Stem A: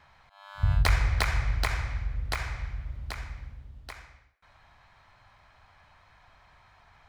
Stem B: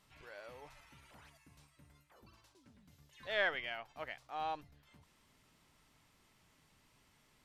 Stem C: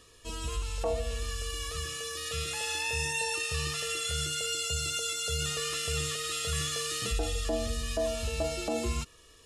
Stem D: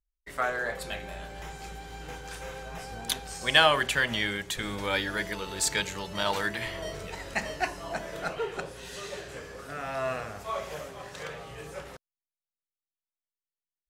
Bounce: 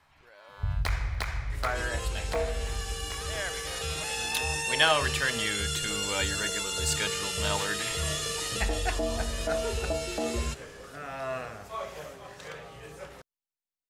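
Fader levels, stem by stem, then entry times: −6.0, −2.5, +0.5, −3.0 decibels; 0.00, 0.00, 1.50, 1.25 seconds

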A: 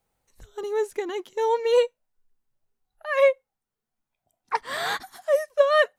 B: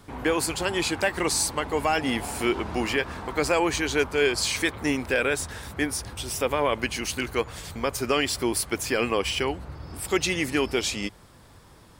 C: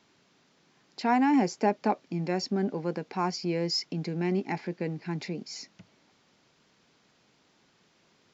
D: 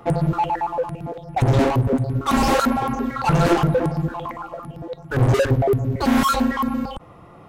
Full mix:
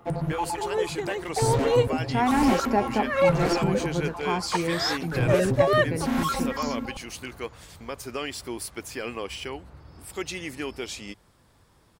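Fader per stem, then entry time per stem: −2.5, −8.5, +1.0, −8.5 decibels; 0.00, 0.05, 1.10, 0.00 seconds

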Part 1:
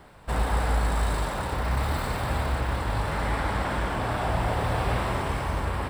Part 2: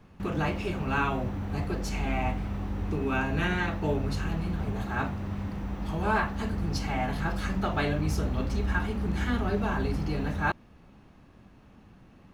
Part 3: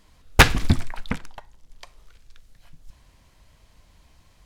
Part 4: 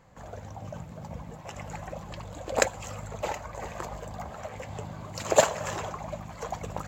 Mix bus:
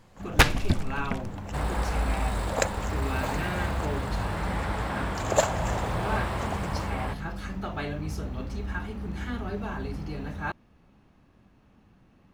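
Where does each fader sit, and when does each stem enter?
−4.0, −5.0, −5.5, −3.0 decibels; 1.25, 0.00, 0.00, 0.00 seconds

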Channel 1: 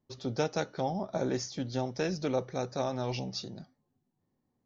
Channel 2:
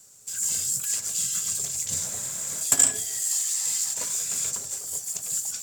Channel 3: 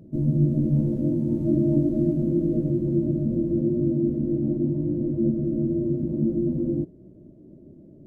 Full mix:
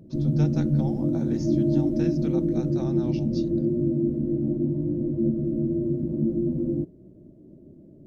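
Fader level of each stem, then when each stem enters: −7.5 dB, muted, −1.0 dB; 0.00 s, muted, 0.00 s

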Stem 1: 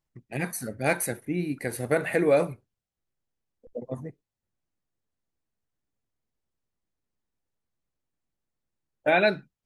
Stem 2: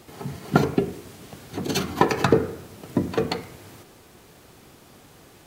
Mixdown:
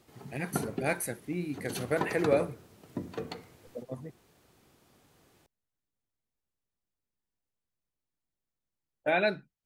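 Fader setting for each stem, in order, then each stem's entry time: −5.5, −14.0 decibels; 0.00, 0.00 seconds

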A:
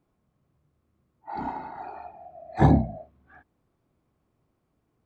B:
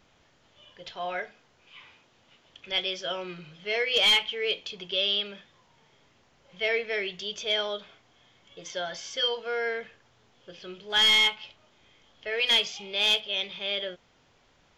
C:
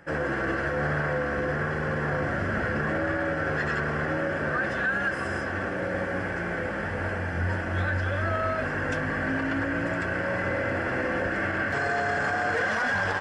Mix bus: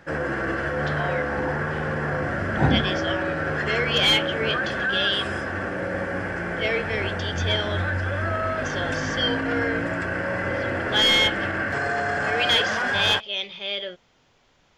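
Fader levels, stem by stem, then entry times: −3.0, +1.5, +1.5 decibels; 0.00, 0.00, 0.00 seconds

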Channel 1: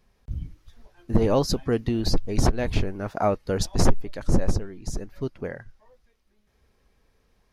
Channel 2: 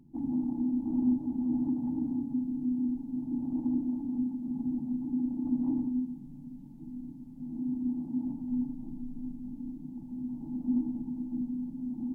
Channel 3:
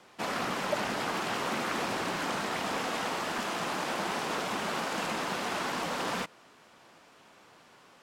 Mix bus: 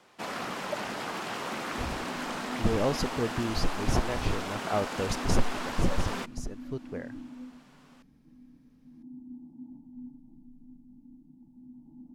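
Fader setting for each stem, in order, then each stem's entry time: −6.5, −13.0, −3.0 decibels; 1.50, 1.45, 0.00 seconds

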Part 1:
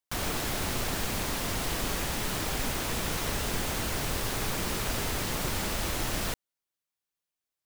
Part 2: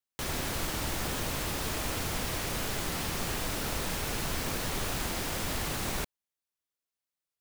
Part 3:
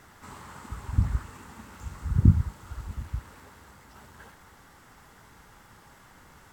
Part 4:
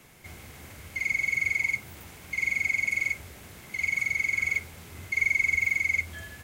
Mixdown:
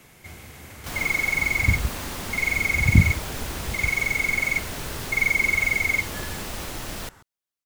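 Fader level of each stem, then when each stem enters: −2.5, −7.5, +2.0, +3.0 decibels; 0.75, 0.65, 0.70, 0.00 seconds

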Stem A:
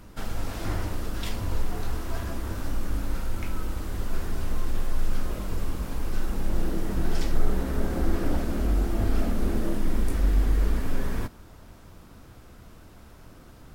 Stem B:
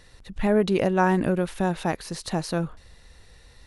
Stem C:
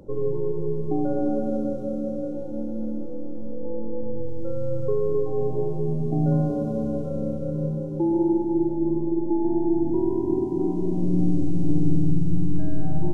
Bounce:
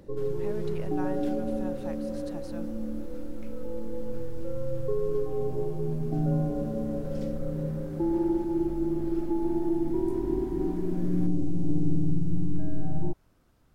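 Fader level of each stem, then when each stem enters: −16.5, −18.5, −5.0 decibels; 0.00, 0.00, 0.00 seconds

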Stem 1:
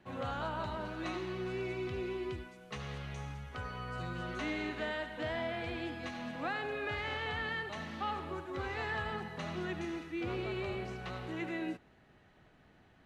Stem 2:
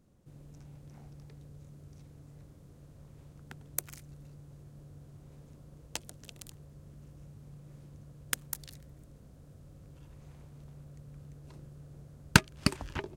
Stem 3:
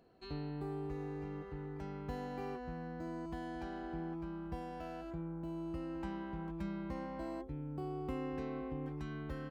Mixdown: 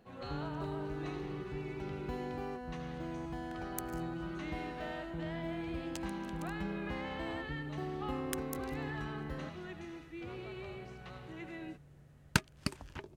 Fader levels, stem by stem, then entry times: −7.5, −8.5, +1.0 decibels; 0.00, 0.00, 0.00 seconds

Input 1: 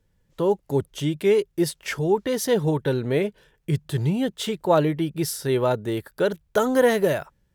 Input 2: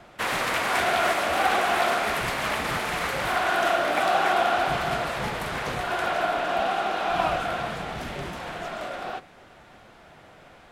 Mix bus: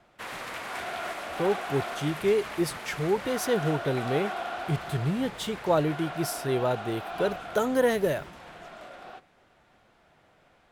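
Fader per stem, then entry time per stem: −5.0, −11.5 decibels; 1.00, 0.00 seconds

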